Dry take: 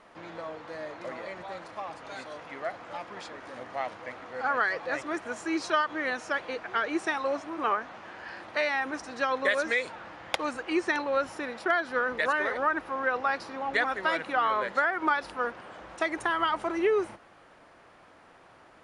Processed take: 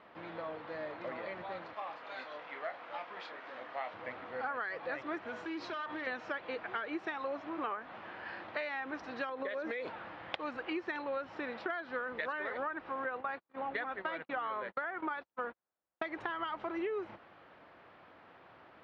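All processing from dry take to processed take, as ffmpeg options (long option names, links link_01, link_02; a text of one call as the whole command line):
ffmpeg -i in.wav -filter_complex "[0:a]asettb=1/sr,asplit=3[link_01][link_02][link_03];[link_01]atrim=end=1.734[link_04];[link_02]atrim=start=1.73:end=3.94,asetpts=PTS-STARTPTS,afade=type=in:duration=0.004:curve=qsin,afade=type=out:start_time=2.206:duration=0.004:curve=qsin,highpass=frequency=640:poles=1,asplit=2[link_05][link_06];[link_06]adelay=27,volume=-7.5dB[link_07];[link_05][link_07]amix=inputs=2:normalize=0,atrim=end_sample=97461[link_08];[link_03]atrim=start=3.936[link_09];[link_04][link_08]acrossfade=duration=0.004:curve1=hsin:curve2=qsin[link_10];[link_10][link_09]acrossfade=duration=0.004:curve1=qsin:curve2=hsin,asettb=1/sr,asplit=3[link_11][link_12][link_13];[link_11]atrim=end=5.254[link_14];[link_12]atrim=start=5.25:end=6.07,asetpts=PTS-STARTPTS,afade=type=in:duration=0.004:curve=qsin,afade=type=out:start_time=0.816:duration=0.004:curve=qsin,bandreject=frequency=70.21:width_type=h:width=4,bandreject=frequency=140.42:width_type=h:width=4,bandreject=frequency=210.63:width_type=h:width=4,bandreject=frequency=280.84:width_type=h:width=4,bandreject=frequency=351.05:width_type=h:width=4,bandreject=frequency=421.26:width_type=h:width=4,bandreject=frequency=491.47:width_type=h:width=4,bandreject=frequency=561.68:width_type=h:width=4,bandreject=frequency=631.89:width_type=h:width=4,bandreject=frequency=702.1:width_type=h:width=4,bandreject=frequency=772.31:width_type=h:width=4,bandreject=frequency=842.52:width_type=h:width=4,bandreject=frequency=912.73:width_type=h:width=4,bandreject=frequency=982.94:width_type=h:width=4,bandreject=frequency=1053.15:width_type=h:width=4,bandreject=frequency=1123.36:width_type=h:width=4,bandreject=frequency=1193.57:width_type=h:width=4,bandreject=frequency=1263.78:width_type=h:width=4,bandreject=frequency=1333.99:width_type=h:width=4,bandreject=frequency=1404.2:width_type=h:width=4,bandreject=frequency=1474.41:width_type=h:width=4,bandreject=frequency=1544.62:width_type=h:width=4,bandreject=frequency=1614.83:width_type=h:width=4,bandreject=frequency=1685.04:width_type=h:width=4,bandreject=frequency=1755.25:width_type=h:width=4,bandreject=frequency=1825.46:width_type=h:width=4,bandreject=frequency=1895.67:width_type=h:width=4,bandreject=frequency=1965.88:width_type=h:width=4,bandreject=frequency=2036.09:width_type=h:width=4,acompressor=threshold=-32dB:ratio=4:attack=3.2:release=140:knee=1:detection=peak,asoftclip=type=hard:threshold=-33dB[link_15];[link_13]atrim=start=6.066[link_16];[link_14][link_15]acrossfade=duration=0.004:curve1=hsin:curve2=qsin[link_17];[link_17][link_16]acrossfade=duration=0.004:curve1=qsin:curve2=hsin,asettb=1/sr,asplit=3[link_18][link_19][link_20];[link_18]atrim=end=9.294[link_21];[link_19]atrim=start=9.29:end=9.9,asetpts=PTS-STARTPTS,afade=type=in:duration=0.004:curve=qsin,afade=type=out:start_time=0.606:duration=0.004:curve=qsin,equalizer=frequency=420:width=0.64:gain=8,acompressor=threshold=-29dB:ratio=4:attack=3.2:release=140:knee=1:detection=peak[link_22];[link_20]atrim=start=9.896[link_23];[link_21][link_22]acrossfade=duration=0.004:curve1=hsin:curve2=qsin[link_24];[link_24][link_23]acrossfade=duration=0.004:curve1=qsin:curve2=hsin,asettb=1/sr,asplit=3[link_25][link_26][link_27];[link_25]atrim=end=13.044[link_28];[link_26]atrim=start=13.04:end=16.02,asetpts=PTS-STARTPTS,afade=type=in:duration=0.004:curve=qsin,afade=type=out:start_time=2.976:duration=0.004:curve=qsin,highshelf=frequency=4800:gain=-8.5,bandreject=frequency=5200:width=15,agate=range=-47dB:threshold=-38dB:ratio=16:release=100:detection=peak[link_29];[link_27]atrim=start=16.016[link_30];[link_28][link_29]acrossfade=duration=0.004:curve1=hsin:curve2=qsin[link_31];[link_31][link_30]acrossfade=duration=0.004:curve1=qsin:curve2=hsin,highpass=65,acompressor=threshold=-32dB:ratio=6,lowpass=frequency=3900:width=0.5412,lowpass=frequency=3900:width=1.3066,volume=-2.5dB" out.wav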